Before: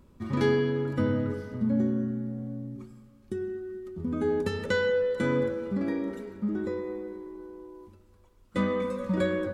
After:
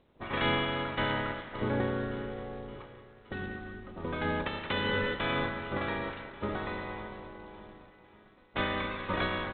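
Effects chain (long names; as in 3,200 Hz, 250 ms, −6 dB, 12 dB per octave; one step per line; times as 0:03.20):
ceiling on every frequency bin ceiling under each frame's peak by 28 dB
low-pass that shuts in the quiet parts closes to 500 Hz, open at −27 dBFS
on a send: repeating echo 569 ms, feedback 60%, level −18.5 dB
on the sum: level −4 dB
G.726 24 kbit/s 8,000 Hz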